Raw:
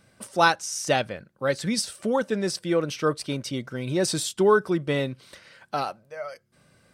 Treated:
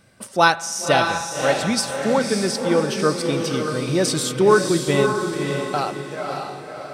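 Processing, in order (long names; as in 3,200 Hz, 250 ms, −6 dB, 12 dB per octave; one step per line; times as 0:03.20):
feedback delay with all-pass diffusion 575 ms, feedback 41%, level −4 dB
spring reverb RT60 1.1 s, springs 49 ms, DRR 17 dB
level +4 dB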